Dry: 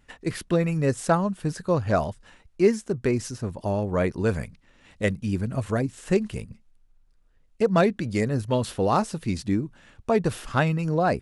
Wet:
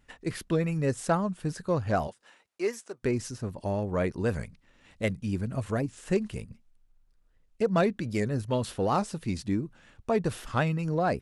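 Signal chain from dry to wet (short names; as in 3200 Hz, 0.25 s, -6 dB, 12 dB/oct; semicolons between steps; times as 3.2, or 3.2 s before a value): 2.07–3.02 HPF 310 Hz -> 690 Hz 12 dB/oct; in parallel at -10.5 dB: soft clip -18 dBFS, distortion -14 dB; on the sum: record warp 78 rpm, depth 100 cents; gain -6 dB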